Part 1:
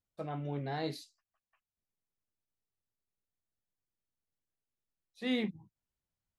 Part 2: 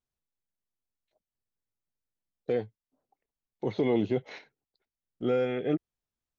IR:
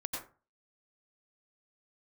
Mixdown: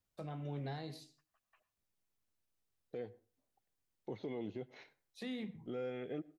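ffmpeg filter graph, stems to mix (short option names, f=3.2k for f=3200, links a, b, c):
-filter_complex "[0:a]acrossover=split=220|3600[a][b][c];[a]acompressor=threshold=-44dB:ratio=4[d];[b]acompressor=threshold=-46dB:ratio=4[e];[c]acompressor=threshold=-57dB:ratio=4[f];[d][e][f]amix=inputs=3:normalize=0,volume=2.5dB,asplit=2[g][h];[h]volume=-15.5dB[i];[1:a]adelay=450,volume=-10dB,asplit=2[j][k];[k]volume=-22.5dB[l];[2:a]atrim=start_sample=2205[m];[i][l]amix=inputs=2:normalize=0[n];[n][m]afir=irnorm=-1:irlink=0[o];[g][j][o]amix=inputs=3:normalize=0,alimiter=level_in=9.5dB:limit=-24dB:level=0:latency=1:release=368,volume=-9.5dB"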